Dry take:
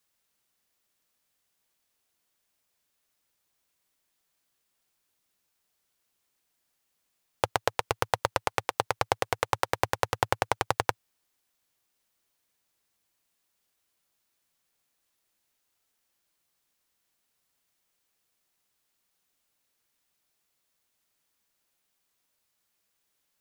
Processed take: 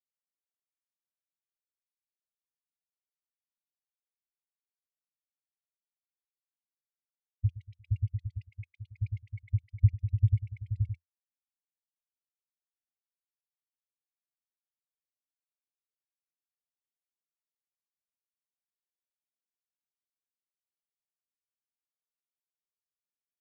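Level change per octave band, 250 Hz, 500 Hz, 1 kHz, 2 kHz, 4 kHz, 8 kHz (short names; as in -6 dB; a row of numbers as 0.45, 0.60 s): n/a, under -40 dB, under -40 dB, under -25 dB, under -35 dB, under -35 dB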